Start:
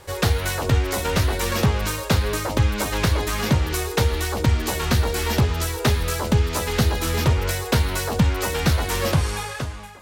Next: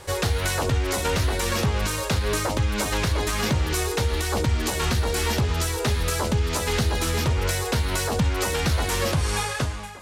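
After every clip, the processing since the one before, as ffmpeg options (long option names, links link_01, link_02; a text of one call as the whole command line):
ffmpeg -i in.wav -af "lowpass=11000,highshelf=frequency=6000:gain=4.5,alimiter=limit=-16.5dB:level=0:latency=1:release=175,volume=2.5dB" out.wav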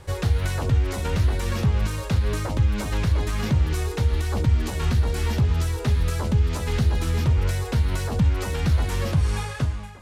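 ffmpeg -i in.wav -af "bass=frequency=250:gain=10,treble=frequency=4000:gain=-4,volume=-6dB" out.wav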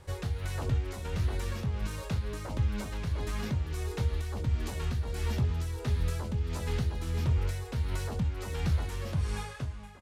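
ffmpeg -i in.wav -filter_complex "[0:a]tremolo=f=1.5:d=0.37,asplit=2[link_01][link_02];[link_02]adelay=24,volume=-11dB[link_03];[link_01][link_03]amix=inputs=2:normalize=0,volume=-8dB" out.wav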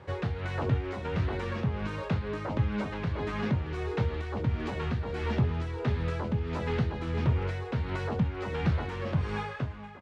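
ffmpeg -i in.wav -af "highpass=120,lowpass=2500,volume=6.5dB" out.wav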